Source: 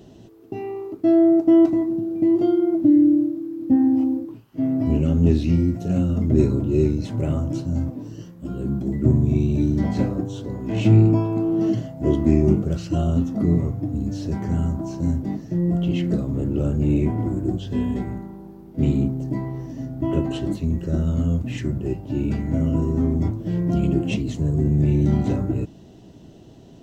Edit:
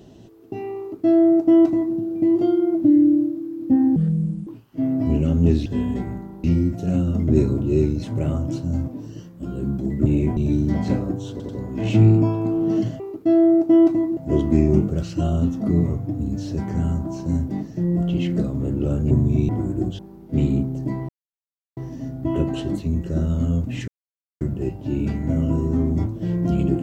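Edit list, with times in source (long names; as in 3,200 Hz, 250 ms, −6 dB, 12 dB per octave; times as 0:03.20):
0:00.78–0:01.95: duplicate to 0:11.91
0:03.96–0:04.27: play speed 61%
0:09.08–0:09.46: swap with 0:16.85–0:17.16
0:10.40: stutter 0.09 s, 3 plays
0:17.66–0:18.44: move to 0:05.46
0:19.54: splice in silence 0.68 s
0:21.65: splice in silence 0.53 s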